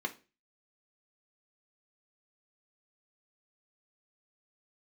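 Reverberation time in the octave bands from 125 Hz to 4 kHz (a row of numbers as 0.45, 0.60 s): 0.45, 0.35, 0.35, 0.30, 0.30, 0.30 s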